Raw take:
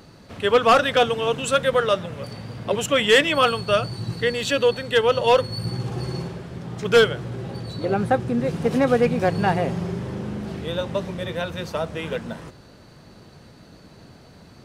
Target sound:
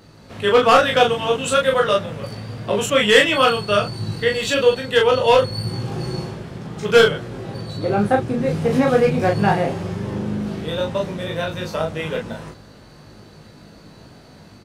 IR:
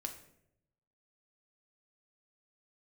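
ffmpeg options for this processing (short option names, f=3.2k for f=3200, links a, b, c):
-filter_complex "[0:a]dynaudnorm=f=130:g=3:m=3dB,asplit=2[a][b];[b]aecho=0:1:19|39:0.668|0.668[c];[a][c]amix=inputs=2:normalize=0,volume=-2.5dB"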